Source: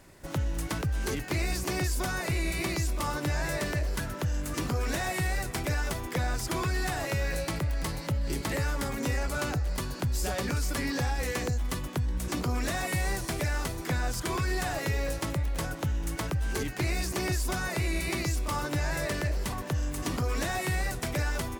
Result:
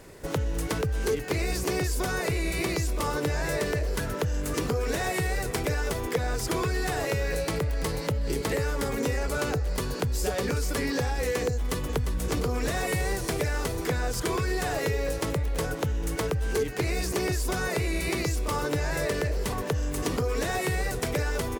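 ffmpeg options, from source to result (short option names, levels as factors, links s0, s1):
-filter_complex "[0:a]asplit=2[s0][s1];[s1]afade=t=in:st=11.54:d=0.01,afade=t=out:st=12.12:d=0.01,aecho=0:1:350|700|1050|1400|1750|2100|2450|2800|3150:0.473151|0.307548|0.199906|0.129939|0.0844605|0.0548993|0.0356845|0.023195|0.0150767[s2];[s0][s2]amix=inputs=2:normalize=0,equalizer=f=450:w=5.2:g=14,acompressor=threshold=0.0282:ratio=2.5,volume=1.78"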